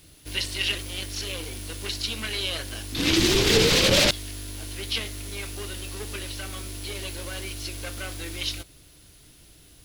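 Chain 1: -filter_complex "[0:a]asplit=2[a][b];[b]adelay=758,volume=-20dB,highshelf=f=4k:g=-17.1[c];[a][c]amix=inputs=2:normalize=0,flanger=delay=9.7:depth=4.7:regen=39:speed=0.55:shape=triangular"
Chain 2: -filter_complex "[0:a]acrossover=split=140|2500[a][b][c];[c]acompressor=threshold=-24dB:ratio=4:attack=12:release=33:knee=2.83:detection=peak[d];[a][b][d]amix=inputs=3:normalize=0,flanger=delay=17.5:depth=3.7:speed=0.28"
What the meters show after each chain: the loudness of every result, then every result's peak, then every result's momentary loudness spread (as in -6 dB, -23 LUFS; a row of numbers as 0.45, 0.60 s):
-29.5, -29.0 LUFS; -10.5, -9.5 dBFS; 16, 15 LU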